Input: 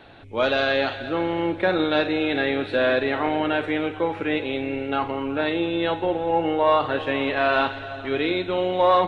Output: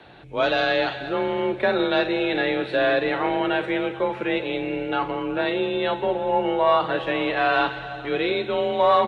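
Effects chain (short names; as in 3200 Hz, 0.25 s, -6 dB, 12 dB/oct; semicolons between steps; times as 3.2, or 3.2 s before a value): frequency shift +33 Hz; echo 0.191 s -20.5 dB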